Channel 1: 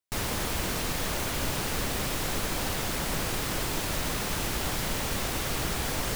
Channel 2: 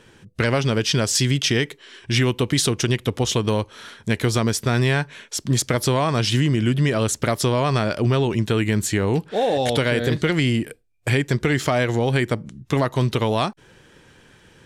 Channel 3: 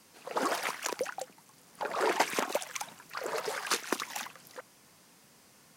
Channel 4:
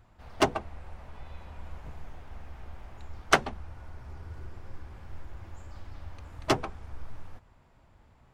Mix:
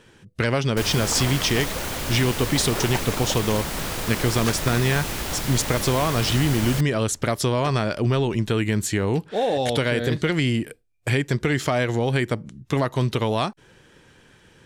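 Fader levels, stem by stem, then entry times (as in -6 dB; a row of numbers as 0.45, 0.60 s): +1.5, -2.0, -2.5, -12.0 dB; 0.65, 0.00, 0.75, 1.15 s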